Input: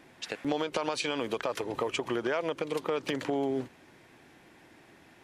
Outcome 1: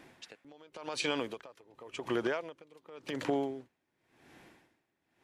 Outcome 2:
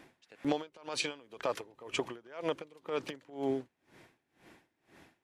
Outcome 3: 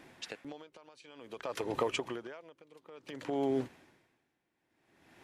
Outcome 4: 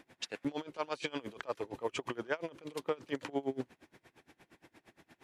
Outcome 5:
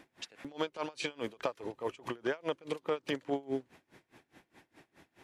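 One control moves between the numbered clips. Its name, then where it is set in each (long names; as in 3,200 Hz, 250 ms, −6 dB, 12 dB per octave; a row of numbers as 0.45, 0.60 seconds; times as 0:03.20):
tremolo with a sine in dB, speed: 0.91, 2, 0.56, 8.6, 4.8 Hertz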